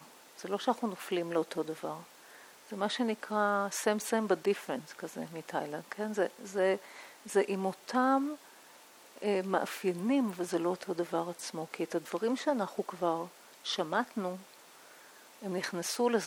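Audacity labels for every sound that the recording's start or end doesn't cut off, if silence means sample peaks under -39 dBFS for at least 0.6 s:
2.720000	8.350000	sound
9.180000	14.360000	sound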